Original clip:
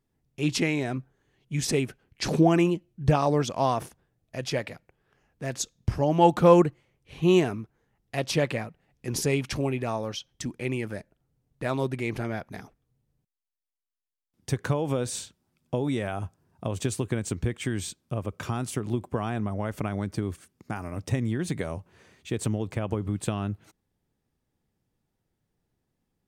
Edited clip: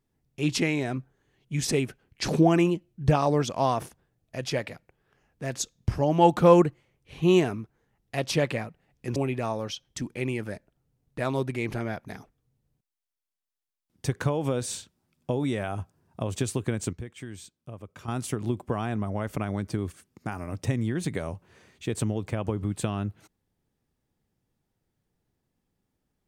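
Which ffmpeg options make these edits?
-filter_complex "[0:a]asplit=4[a][b][c][d];[a]atrim=end=9.162[e];[b]atrim=start=9.598:end=17.372[f];[c]atrim=start=17.368:end=18.522,asetpts=PTS-STARTPTS,volume=-10.5dB[g];[d]atrim=start=18.518[h];[e][f]acrossfade=d=0.004:c1=hsin:c2=hsin[i];[i][g]acrossfade=d=0.004:c1=hsin:c2=hsin[j];[j][h]acrossfade=d=0.004:c1=hsin:c2=hsin"

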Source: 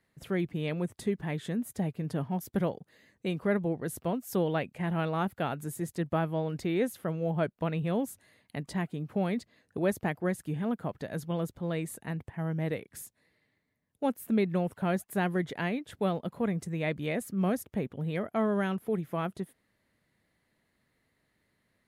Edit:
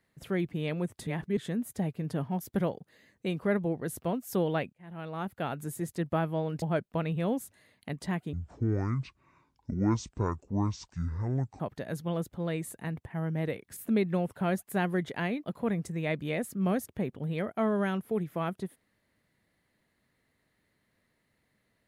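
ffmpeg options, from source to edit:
-filter_complex "[0:a]asplit=9[a][b][c][d][e][f][g][h][i];[a]atrim=end=1.072[j];[b]atrim=start=1.068:end=1.372,asetpts=PTS-STARTPTS,areverse[k];[c]atrim=start=1.368:end=4.73,asetpts=PTS-STARTPTS,afade=t=out:st=3.358:d=0.004:c=hsin[l];[d]atrim=start=4.73:end=6.622,asetpts=PTS-STARTPTS,afade=t=in:d=0.89[m];[e]atrim=start=7.288:end=9.004[n];[f]atrim=start=9:end=10.83,asetpts=PTS-STARTPTS,asetrate=24696,aresample=44100,atrim=end_sample=144112,asetpts=PTS-STARTPTS[o];[g]atrim=start=10.826:end=13.002[p];[h]atrim=start=14.178:end=15.852[q];[i]atrim=start=16.208[r];[j][k]acrossfade=d=0.004:c1=hsin:c2=hsin[s];[l][m]concat=n=2:v=0:a=1[t];[s][t]acrossfade=d=0.004:c1=hsin:c2=hsin[u];[u][n]acrossfade=d=0.004:c1=hsin:c2=hsin[v];[v][o]acrossfade=d=0.004:c1=hsin:c2=hsin[w];[w][p]acrossfade=d=0.004:c1=hsin:c2=hsin[x];[x][q]acrossfade=d=0.004:c1=hsin:c2=hsin[y];[y][r]acrossfade=d=0.004:c1=hsin:c2=hsin"

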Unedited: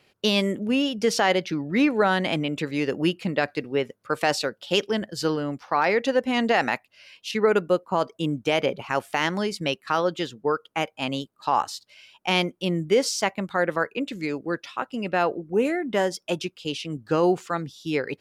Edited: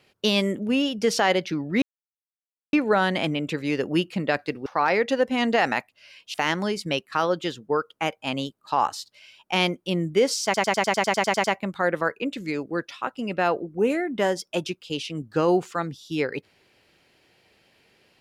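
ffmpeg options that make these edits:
-filter_complex "[0:a]asplit=14[a][b][c][d][e][f][g][h][i][j][k][l][m][n];[a]atrim=end=1.82,asetpts=PTS-STARTPTS,afade=t=out:st=1.816:d=0.004:c=hsin,apad=pad_dur=0.91[o];[b]atrim=start=1.82:end=3.752,asetpts=PTS-STARTPTS,afade=t=in:d=0.004:c=hsin[p];[c]atrim=start=5.618:end=7.302[q];[d]atrim=start=9.088:end=13.292[r];[e]atrim=start=13.188:end=13.292[s];[f]atrim=start=13.188:end=13.292[t];[g]atrim=start=13.188:end=13.292[u];[h]atrim=start=13.188:end=13.292[v];[i]atrim=start=13.188:end=13.292[w];[j]atrim=start=13.188:end=13.292[x];[k]atrim=start=13.188:end=13.292[y];[l]atrim=start=13.188:end=13.292[z];[m]atrim=start=13.188:end=13.292[aa];[n]atrim=start=13.188[ab];[o][p]concat=n=2:v=0:a=1[ac];[ac][q]acrossfade=d=0.004:c1=hsin:c2=hsin[ad];[ad][r]acrossfade=d=0.004:c1=hsin:c2=hsin[ae];[ae][s]acrossfade=d=0.004:c1=hsin:c2=hsin[af];[af][t]acrossfade=d=0.004:c1=hsin:c2=hsin[ag];[ag][u]acrossfade=d=0.004:c1=hsin:c2=hsin[ah];[ah][v]acrossfade=d=0.004:c1=hsin:c2=hsin[ai];[ai][w]acrossfade=d=0.004:c1=hsin:c2=hsin[aj];[aj][x]acrossfade=d=0.004:c1=hsin:c2=hsin[ak];[ak][y]acrossfade=d=0.004:c1=hsin:c2=hsin[al];[al][z]acrossfade=d=0.004:c1=hsin:c2=hsin[am];[am][aa]acrossfade=d=0.004:c1=hsin:c2=hsin[an];[an][ab]acrossfade=d=0.004:c1=hsin:c2=hsin"

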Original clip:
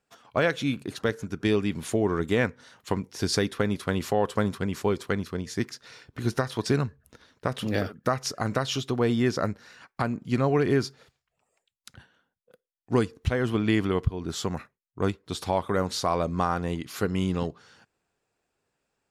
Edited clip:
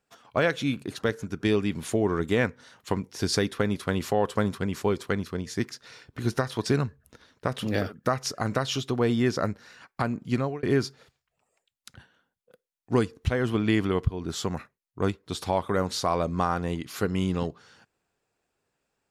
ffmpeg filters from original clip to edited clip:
-filter_complex "[0:a]asplit=2[a][b];[a]atrim=end=10.63,asetpts=PTS-STARTPTS,afade=t=out:st=10.33:d=0.3[c];[b]atrim=start=10.63,asetpts=PTS-STARTPTS,afade=t=in:d=0.004:c=hsin[d];[c][d]concat=n=2:v=0:a=1"

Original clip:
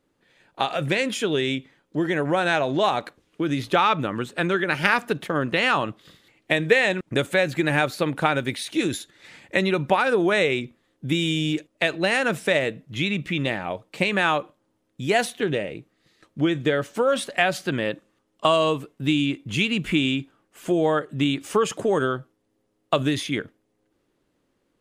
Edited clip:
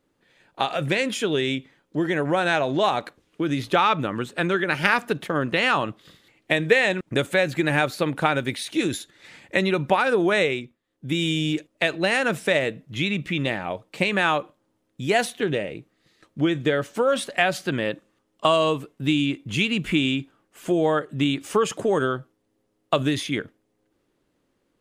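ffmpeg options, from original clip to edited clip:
-filter_complex "[0:a]asplit=3[a][b][c];[a]atrim=end=10.78,asetpts=PTS-STARTPTS,afade=t=out:st=10.42:d=0.36:silence=0.211349[d];[b]atrim=start=10.78:end=10.86,asetpts=PTS-STARTPTS,volume=-13.5dB[e];[c]atrim=start=10.86,asetpts=PTS-STARTPTS,afade=t=in:d=0.36:silence=0.211349[f];[d][e][f]concat=n=3:v=0:a=1"

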